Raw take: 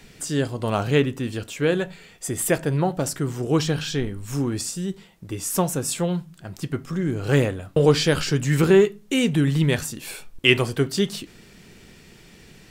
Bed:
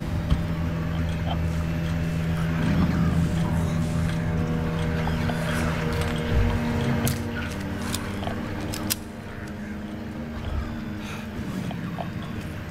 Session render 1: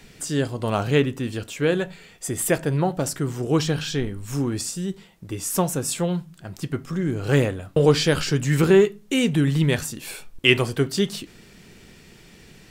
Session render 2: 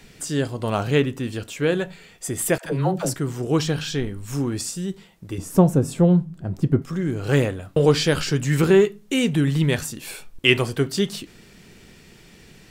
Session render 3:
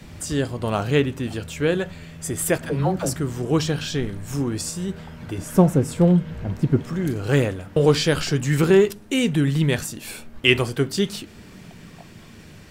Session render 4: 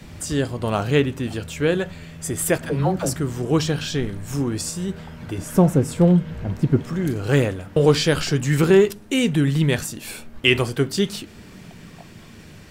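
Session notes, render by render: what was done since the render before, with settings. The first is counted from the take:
nothing audible
2.58–3.14 dispersion lows, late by 74 ms, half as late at 520 Hz; 5.38–6.82 tilt shelf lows +10 dB
add bed -14 dB
gain +1 dB; limiter -3 dBFS, peak gain reduction 2.5 dB

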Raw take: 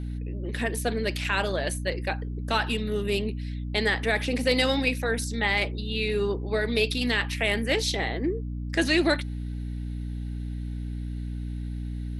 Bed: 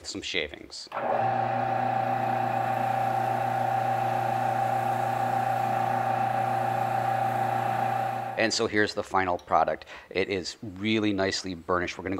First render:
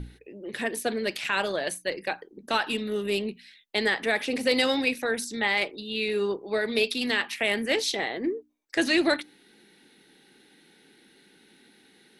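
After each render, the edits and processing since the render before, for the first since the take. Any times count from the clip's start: notches 60/120/180/240/300 Hz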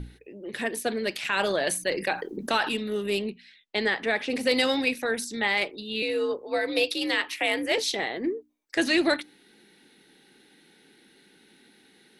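1.39–2.69 fast leveller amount 50%; 3.3–4.3 air absorption 75 m; 6.02–7.78 frequency shift +60 Hz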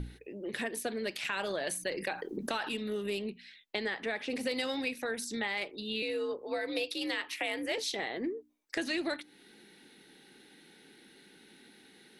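compressor 3:1, threshold -34 dBFS, peak gain reduction 11.5 dB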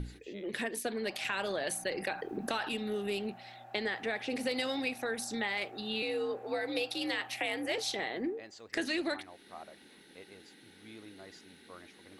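add bed -25.5 dB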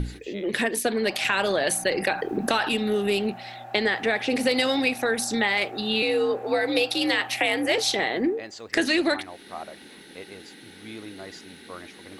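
gain +11 dB

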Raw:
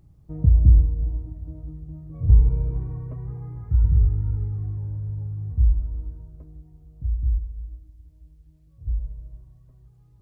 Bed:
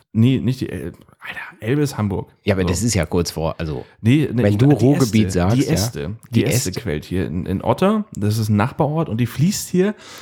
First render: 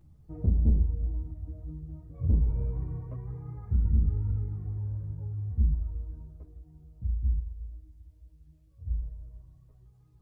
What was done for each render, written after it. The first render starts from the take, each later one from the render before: soft clip -15.5 dBFS, distortion -9 dB; ensemble effect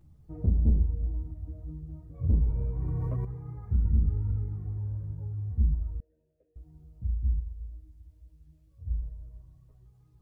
2.78–3.25 fast leveller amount 100%; 6–6.56 vowel filter e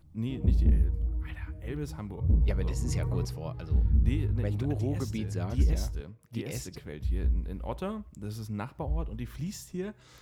add bed -19 dB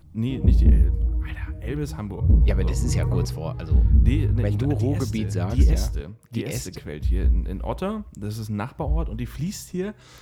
gain +7.5 dB

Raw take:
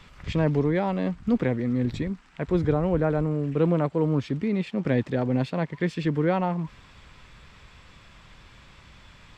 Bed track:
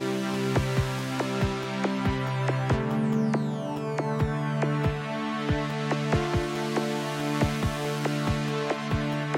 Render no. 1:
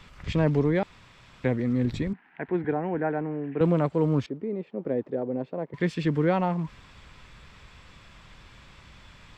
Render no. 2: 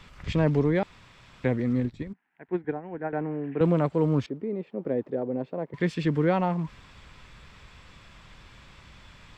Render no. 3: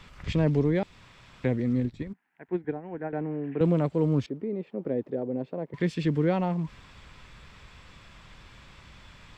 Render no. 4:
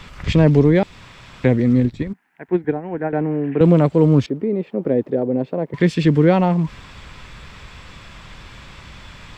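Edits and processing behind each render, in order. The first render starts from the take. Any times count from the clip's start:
0.83–1.44 room tone; 2.13–3.61 speaker cabinet 260–2400 Hz, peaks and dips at 540 Hz -9 dB, 800 Hz +5 dB, 1200 Hz -10 dB, 1700 Hz +6 dB; 4.26–5.74 band-pass 450 Hz, Q 1.5
1.8–3.13 upward expander 2.5:1, over -34 dBFS
dynamic EQ 1200 Hz, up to -6 dB, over -40 dBFS, Q 0.76
gain +11 dB; limiter -2 dBFS, peak gain reduction 1.5 dB

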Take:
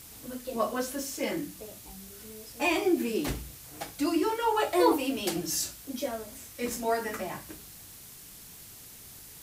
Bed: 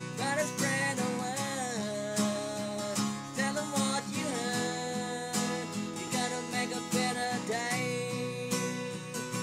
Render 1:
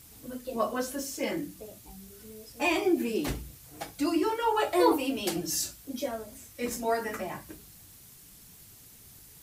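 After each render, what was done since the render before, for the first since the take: denoiser 6 dB, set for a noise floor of -49 dBFS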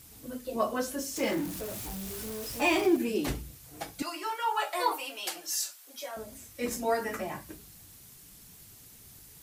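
1.16–2.97 zero-crossing step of -35 dBFS; 4.02–6.17 Chebyshev high-pass 940 Hz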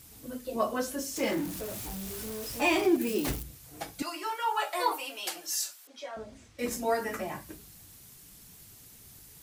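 3.01–3.43 switching spikes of -30.5 dBFS; 5.87–6.59 air absorption 120 m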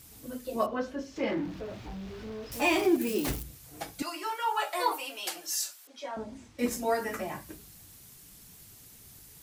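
0.66–2.52 air absorption 230 m; 6.03–6.66 small resonant body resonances 250/890 Hz, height 10 dB -> 7 dB, ringing for 20 ms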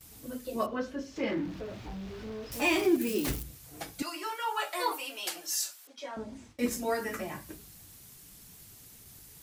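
gate with hold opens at -43 dBFS; dynamic EQ 760 Hz, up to -5 dB, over -44 dBFS, Q 1.6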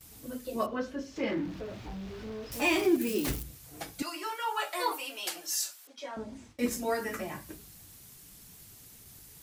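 nothing audible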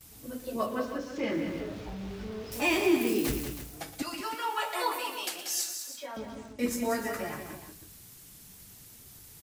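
tapped delay 56/119/186/321 ms -18.5/-17.5/-7.5/-12 dB; lo-fi delay 0.115 s, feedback 35%, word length 7-bit, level -14.5 dB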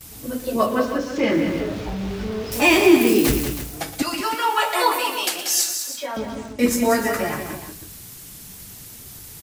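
gain +11.5 dB

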